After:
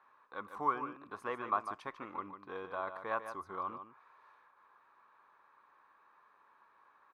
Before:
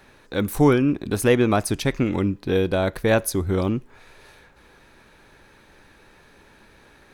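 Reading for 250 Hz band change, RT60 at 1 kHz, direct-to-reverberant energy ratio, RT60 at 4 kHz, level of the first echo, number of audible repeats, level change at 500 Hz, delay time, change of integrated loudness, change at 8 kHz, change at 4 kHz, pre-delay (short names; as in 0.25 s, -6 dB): -28.0 dB, none, none, none, -9.5 dB, 1, -22.0 dB, 0.149 s, -18.0 dB, under -35 dB, -26.0 dB, none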